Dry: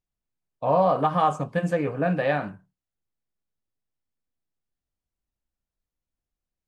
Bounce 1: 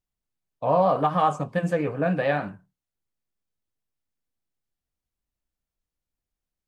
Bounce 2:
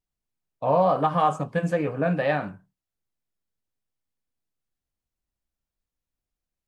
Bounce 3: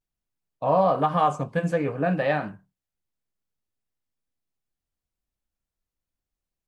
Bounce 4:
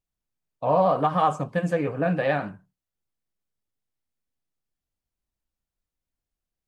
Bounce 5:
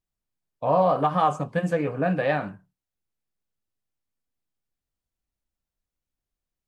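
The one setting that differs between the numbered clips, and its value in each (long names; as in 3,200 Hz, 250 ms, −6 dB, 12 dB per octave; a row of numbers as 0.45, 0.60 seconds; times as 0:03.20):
pitch vibrato, speed: 7.2, 2.3, 0.51, 13, 4.4 Hertz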